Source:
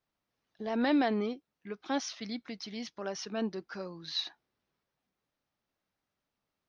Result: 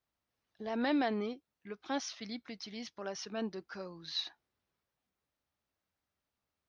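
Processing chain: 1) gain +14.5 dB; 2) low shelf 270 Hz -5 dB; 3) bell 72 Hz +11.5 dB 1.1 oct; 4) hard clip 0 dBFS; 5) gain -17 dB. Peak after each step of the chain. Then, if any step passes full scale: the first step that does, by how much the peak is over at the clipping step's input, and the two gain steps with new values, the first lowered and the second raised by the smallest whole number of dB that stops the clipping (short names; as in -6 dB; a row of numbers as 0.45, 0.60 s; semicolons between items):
-3.5, -3.5, -4.0, -4.0, -21.0 dBFS; no overload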